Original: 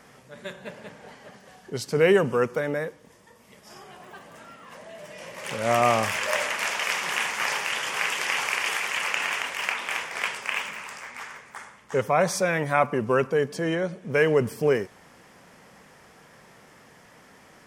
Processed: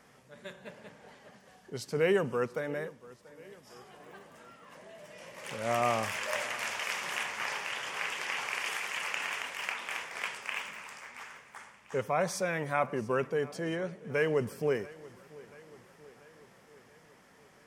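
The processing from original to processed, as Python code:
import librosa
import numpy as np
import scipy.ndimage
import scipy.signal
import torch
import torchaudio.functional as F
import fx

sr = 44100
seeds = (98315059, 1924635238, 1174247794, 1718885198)

y = fx.high_shelf(x, sr, hz=6600.0, db=-6.0, at=(7.23, 8.55))
y = fx.echo_feedback(y, sr, ms=685, feedback_pct=58, wet_db=-21)
y = F.gain(torch.from_numpy(y), -8.0).numpy()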